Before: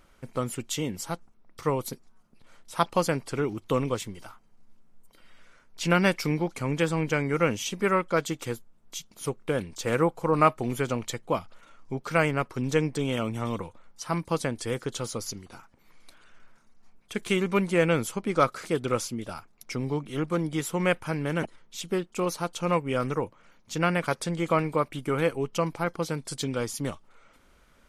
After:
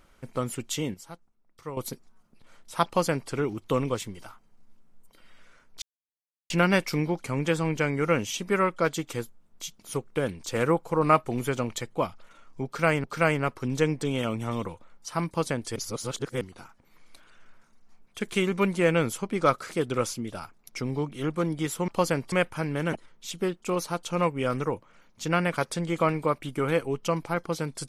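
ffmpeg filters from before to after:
-filter_complex "[0:a]asplit=9[a][b][c][d][e][f][g][h][i];[a]atrim=end=0.942[j];[b]atrim=start=0.938:end=1.772,asetpts=PTS-STARTPTS,volume=-11dB[k];[c]atrim=start=1.768:end=5.82,asetpts=PTS-STARTPTS,afade=t=out:st=4.048:d=0.004:c=hsin,apad=pad_dur=0.68[l];[d]atrim=start=5.82:end=12.362,asetpts=PTS-STARTPTS,afade=t=in:d=0.004:c=hsin[m];[e]atrim=start=11.978:end=14.702[n];[f]atrim=start=14.698:end=15.352,asetpts=PTS-STARTPTS,areverse[o];[g]atrim=start=15.348:end=20.822[p];[h]atrim=start=2.858:end=3.302[q];[i]atrim=start=20.818[r];[j][k]acrossfade=d=0.004:c1=hsin:c2=hsin[s];[l][m]concat=n=2:v=0:a=1[t];[s][t]acrossfade=d=0.004:c1=hsin:c2=hsin[u];[u][n]acrossfade=d=0.004:c1=hsin:c2=hsin[v];[v][o]acrossfade=d=0.004:c1=hsin:c2=hsin[w];[w][p]acrossfade=d=0.004:c1=hsin:c2=hsin[x];[x][q]acrossfade=d=0.004:c1=hsin:c2=hsin[y];[y][r]acrossfade=d=0.004:c1=hsin:c2=hsin"

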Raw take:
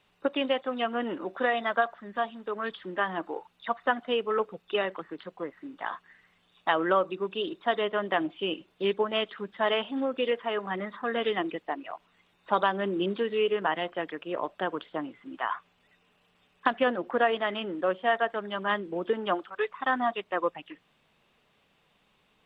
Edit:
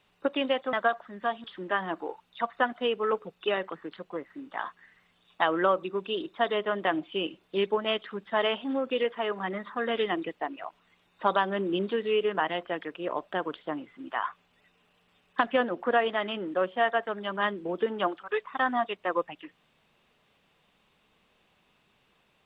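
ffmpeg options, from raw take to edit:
-filter_complex "[0:a]asplit=3[a][b][c];[a]atrim=end=0.732[d];[b]atrim=start=1.658:end=2.372[e];[c]atrim=start=2.708[f];[d][e]acrossfade=d=0.004:c1=hsin:c2=hsin[g];[g][f]acrossfade=d=0.004:c1=hsin:c2=hsin"

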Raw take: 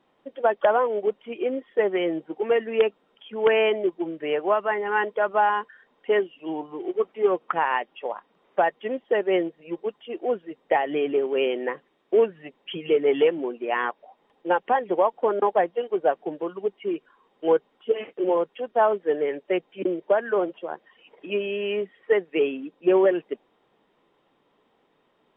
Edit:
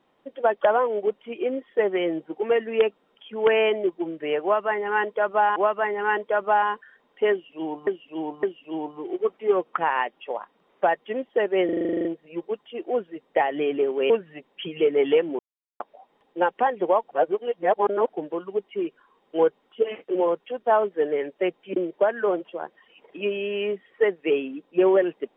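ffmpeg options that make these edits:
-filter_complex "[0:a]asplit=19[a][b][c][d][e][f][g][h][i][j][k][l][m][n][o][p][q][r][s];[a]atrim=end=5.562[t];[b]atrim=start=4.428:end=6.742[u];[c]atrim=start=6.178:end=6.742[v];[d]atrim=start=6.178:end=9.442[w];[e]atrim=start=9.398:end=9.442[x];[f]atrim=start=9.398:end=9.442[y];[g]atrim=start=9.398:end=9.442[z];[h]atrim=start=9.398:end=9.442[aa];[i]atrim=start=9.398:end=9.442[ab];[j]atrim=start=9.398:end=9.442[ac];[k]atrim=start=9.398:end=9.442[ad];[l]atrim=start=9.398:end=9.442[ae];[m]atrim=start=9.398:end=9.442[af];[n]atrim=start=9.398:end=11.452[ag];[o]atrim=start=12.188:end=13.48,asetpts=PTS-STARTPTS,afade=t=out:st=1.288:d=0.004:c=hsin[ah];[p]atrim=start=13.48:end=13.89,asetpts=PTS-STARTPTS,volume=0[ai];[q]atrim=start=13.89:end=15.202,asetpts=PTS-STARTPTS,afade=t=in:d=0.004:c=hsin[aj];[r]atrim=start=15.198:end=16.182,asetpts=PTS-STARTPTS,areverse[ak];[s]atrim=start=16.178[al];[t][u]acrossfade=d=0.004:c1=hsin:c2=hsin[am];[am][v]acrossfade=d=0.004:c1=hsin:c2=hsin[an];[an][w]acrossfade=d=0.004:c1=hsin:c2=hsin[ao];[ao][x]acrossfade=d=0.004:c1=hsin:c2=hsin[ap];[ap][y]acrossfade=d=0.004:c1=hsin:c2=hsin[aq];[aq][z]acrossfade=d=0.004:c1=hsin:c2=hsin[ar];[ar][aa]acrossfade=d=0.004:c1=hsin:c2=hsin[as];[as][ab]acrossfade=d=0.004:c1=hsin:c2=hsin[at];[at][ac]acrossfade=d=0.004:c1=hsin:c2=hsin[au];[au][ad]acrossfade=d=0.004:c1=hsin:c2=hsin[av];[av][ae]acrossfade=d=0.004:c1=hsin:c2=hsin[aw];[aw][af]acrossfade=d=0.004:c1=hsin:c2=hsin[ax];[ax][ag]acrossfade=d=0.004:c1=hsin:c2=hsin[ay];[ah][ai][aj]concat=n=3:v=0:a=1[az];[ay][az]acrossfade=d=0.004:c1=hsin:c2=hsin[ba];[ba][ak]acrossfade=d=0.004:c1=hsin:c2=hsin[bb];[bb][al]acrossfade=d=0.004:c1=hsin:c2=hsin"

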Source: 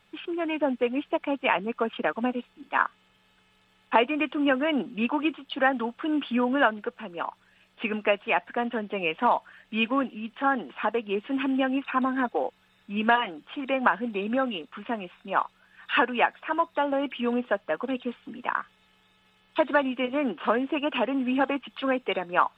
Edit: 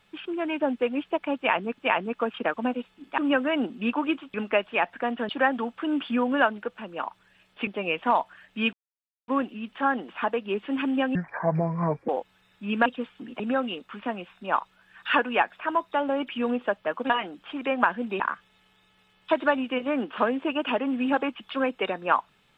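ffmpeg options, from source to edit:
-filter_complex "[0:a]asplit=13[a][b][c][d][e][f][g][h][i][j][k][l][m];[a]atrim=end=1.782[n];[b]atrim=start=1.368:end=2.772[o];[c]atrim=start=4.338:end=5.502[p];[d]atrim=start=7.878:end=8.832[q];[e]atrim=start=5.498:end=7.882[r];[f]atrim=start=8.828:end=9.89,asetpts=PTS-STARTPTS,afade=t=out:st=1.058:d=0.004:c=hsin,apad=pad_dur=0.55[s];[g]atrim=start=9.89:end=11.764,asetpts=PTS-STARTPTS,afade=t=in:d=0.004:c=hsin[t];[h]atrim=start=11.76:end=12.36,asetpts=PTS-STARTPTS,asetrate=28224,aresample=44100[u];[i]atrim=start=12.356:end=13.132[v];[j]atrim=start=17.928:end=18.472[w];[k]atrim=start=14.228:end=17.932[x];[l]atrim=start=13.128:end=14.232[y];[m]atrim=start=18.468[z];[n][o]acrossfade=d=0.004:c1=hsin:c2=hsin[aa];[aa][p]acrossfade=d=0.004:c1=hsin:c2=hsin[ab];[ab][q]acrossfade=d=0.004:c1=hsin:c2=hsin[ac];[ac][r]acrossfade=d=0.004:c1=hsin:c2=hsin[ad];[s][t]concat=n=2:v=0:a=1[ae];[ad][ae]acrossfade=d=0.004:c1=hsin:c2=hsin[af];[af][u]acrossfade=d=0.004:c1=hsin:c2=hsin[ag];[ag][v]acrossfade=d=0.004:c1=hsin:c2=hsin[ah];[ah][w]acrossfade=d=0.004:c1=hsin:c2=hsin[ai];[ai][x]acrossfade=d=0.004:c1=hsin:c2=hsin[aj];[aj][y]acrossfade=d=0.004:c1=hsin:c2=hsin[ak];[ak][z]acrossfade=d=0.004:c1=hsin:c2=hsin"

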